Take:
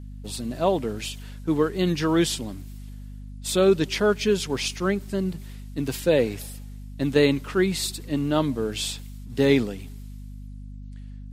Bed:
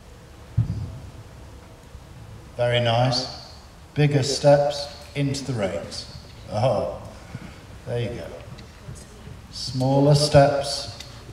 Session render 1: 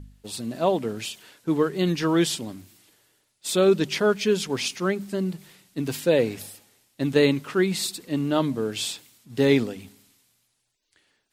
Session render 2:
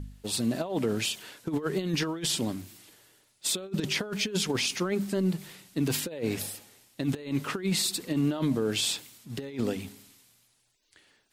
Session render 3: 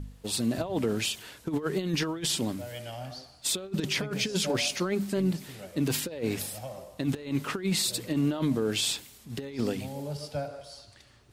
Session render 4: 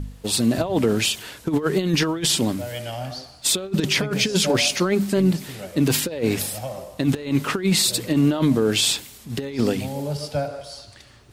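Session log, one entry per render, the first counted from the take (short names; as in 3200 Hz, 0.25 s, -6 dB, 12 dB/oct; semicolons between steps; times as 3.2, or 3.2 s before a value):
de-hum 50 Hz, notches 5
negative-ratio compressor -26 dBFS, ratio -0.5; limiter -18.5 dBFS, peak gain reduction 7.5 dB
add bed -19.5 dB
gain +8.5 dB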